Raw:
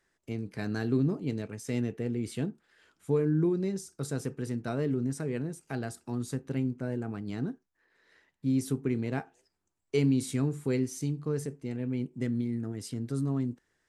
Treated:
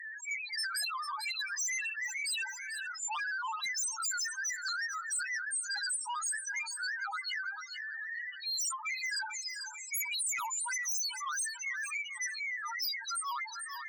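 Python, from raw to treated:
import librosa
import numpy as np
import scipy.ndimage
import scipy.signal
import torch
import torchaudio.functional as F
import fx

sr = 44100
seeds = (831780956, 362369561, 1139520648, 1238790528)

y = scipy.signal.sosfilt(scipy.signal.butter(16, 860.0, 'highpass', fs=sr, output='sos'), x)
y = fx.peak_eq(y, sr, hz=5700.0, db=7.5, octaves=1.9)
y = fx.spec_topn(y, sr, count=1)
y = fx.fold_sine(y, sr, drive_db=13, ceiling_db=-41.0)
y = fx.high_shelf(y, sr, hz=2700.0, db=11.5)
y = fx.echo_feedback(y, sr, ms=444, feedback_pct=22, wet_db=-22.0)
y = fx.env_flatten(y, sr, amount_pct=70)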